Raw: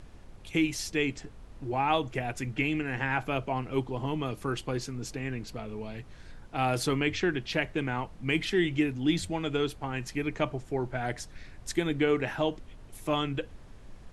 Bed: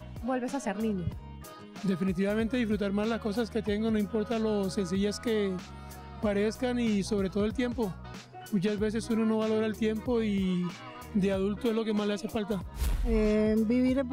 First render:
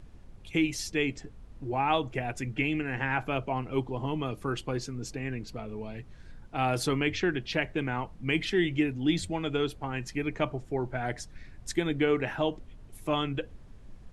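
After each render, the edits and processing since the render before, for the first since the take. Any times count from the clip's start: noise reduction 6 dB, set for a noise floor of -49 dBFS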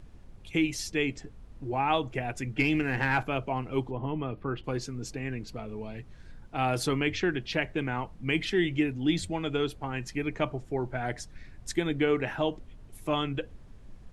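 2.59–3.23 s: waveshaping leveller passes 1; 3.91–4.64 s: distance through air 380 m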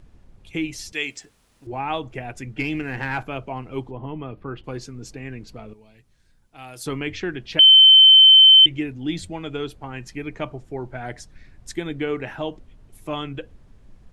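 0.92–1.67 s: tilt EQ +4 dB/octave; 5.73–6.86 s: pre-emphasis filter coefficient 0.8; 7.59–8.66 s: bleep 3.08 kHz -6.5 dBFS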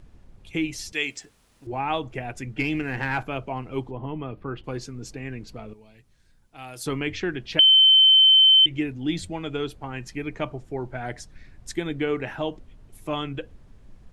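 compression, threshold -13 dBFS, peak gain reduction 5 dB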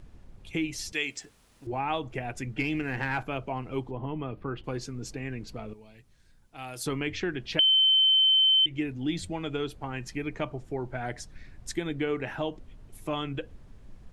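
compression 1.5:1, threshold -32 dBFS, peak gain reduction 7 dB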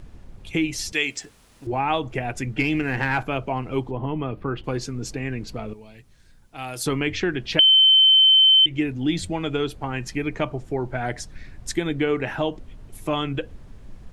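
trim +7 dB

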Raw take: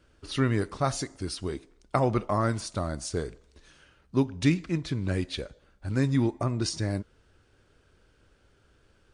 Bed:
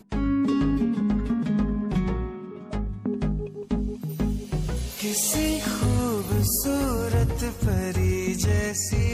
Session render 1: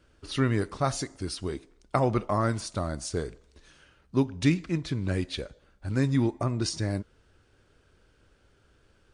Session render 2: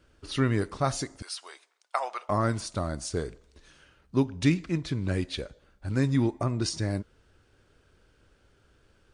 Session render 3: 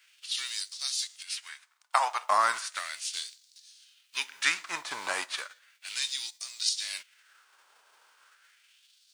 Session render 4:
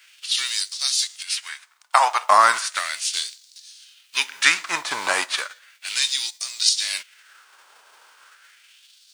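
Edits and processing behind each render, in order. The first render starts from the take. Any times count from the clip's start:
no audible change
1.22–2.29 s: high-pass 720 Hz 24 dB/octave
formants flattened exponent 0.6; LFO high-pass sine 0.35 Hz 880–4600 Hz
trim +10 dB; peak limiter -1 dBFS, peak gain reduction 2 dB

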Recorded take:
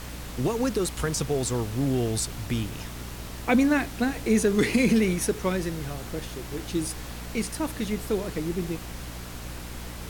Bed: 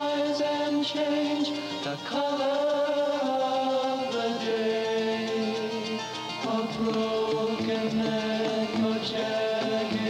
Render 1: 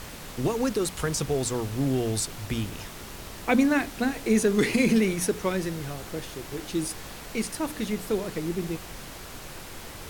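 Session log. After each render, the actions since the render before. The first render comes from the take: hum notches 60/120/180/240/300 Hz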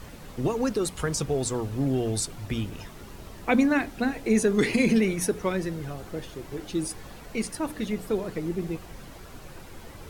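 noise reduction 9 dB, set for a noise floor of -41 dBFS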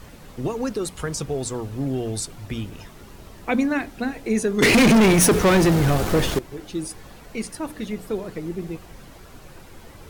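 4.62–6.39 s: waveshaping leveller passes 5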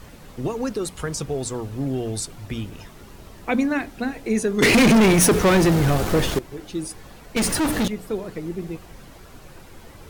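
7.36–7.88 s: waveshaping leveller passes 5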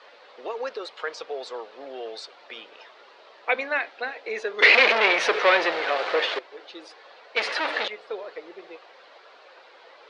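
elliptic band-pass 500–4300 Hz, stop band 60 dB; dynamic bell 2.2 kHz, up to +6 dB, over -39 dBFS, Q 1.3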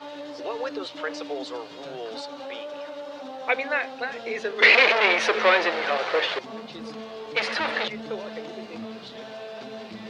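add bed -11 dB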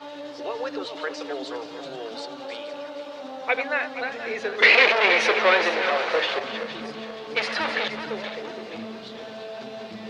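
backward echo that repeats 237 ms, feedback 60%, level -9 dB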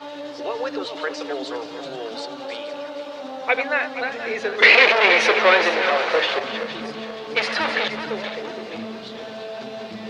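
trim +3.5 dB; peak limiter -1 dBFS, peak gain reduction 1.5 dB

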